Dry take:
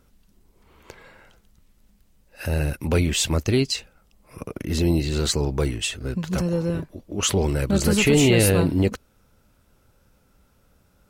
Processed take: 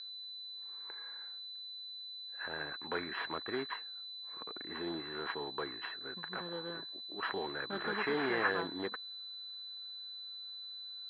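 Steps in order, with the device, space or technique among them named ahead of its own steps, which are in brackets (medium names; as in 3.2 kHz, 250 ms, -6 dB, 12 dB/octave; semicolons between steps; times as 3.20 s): toy sound module (decimation joined by straight lines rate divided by 4×; class-D stage that switches slowly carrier 4 kHz; cabinet simulation 560–4400 Hz, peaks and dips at 560 Hz -10 dB, 1.1 kHz +3 dB, 1.7 kHz +10 dB, 2.7 kHz -4 dB, 4.1 kHz -5 dB); trim -7 dB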